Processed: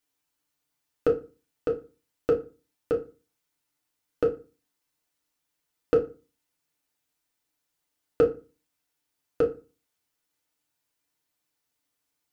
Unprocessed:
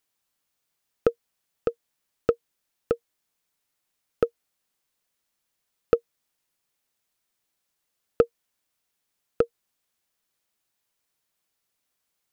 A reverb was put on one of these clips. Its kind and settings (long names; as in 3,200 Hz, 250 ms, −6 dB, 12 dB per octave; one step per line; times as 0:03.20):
feedback delay network reverb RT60 0.32 s, low-frequency decay 1.3×, high-frequency decay 0.75×, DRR −1.5 dB
level −5 dB